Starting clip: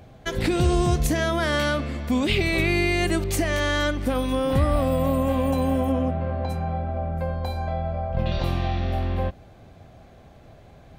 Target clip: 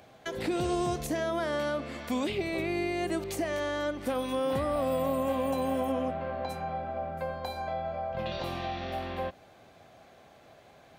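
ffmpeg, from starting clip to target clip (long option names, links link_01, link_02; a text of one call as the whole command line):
ffmpeg -i in.wav -filter_complex "[0:a]highpass=frequency=640:poles=1,acrossover=split=890[link_01][link_02];[link_02]acompressor=threshold=-39dB:ratio=6[link_03];[link_01][link_03]amix=inputs=2:normalize=0" out.wav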